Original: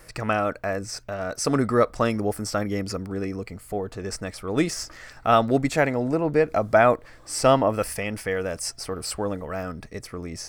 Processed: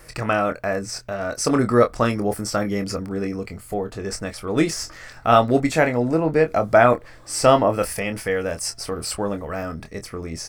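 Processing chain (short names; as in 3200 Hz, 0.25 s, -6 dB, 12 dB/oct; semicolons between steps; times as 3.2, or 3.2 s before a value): doubler 25 ms -8 dB; gain +2.5 dB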